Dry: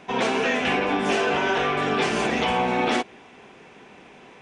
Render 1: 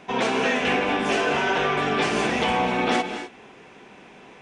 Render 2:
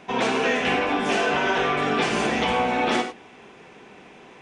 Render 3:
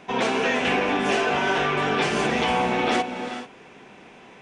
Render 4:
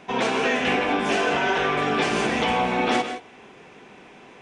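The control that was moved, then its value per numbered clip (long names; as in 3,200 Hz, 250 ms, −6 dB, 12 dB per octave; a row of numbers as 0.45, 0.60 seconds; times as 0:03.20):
reverb whose tail is shaped and stops, gate: 280, 120, 460, 190 milliseconds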